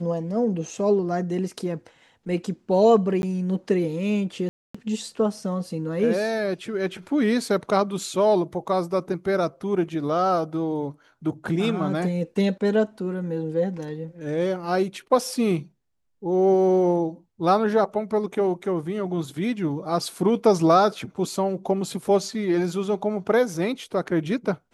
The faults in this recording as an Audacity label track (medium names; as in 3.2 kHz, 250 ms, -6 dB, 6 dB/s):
3.220000	3.230000	dropout 11 ms
4.490000	4.750000	dropout 255 ms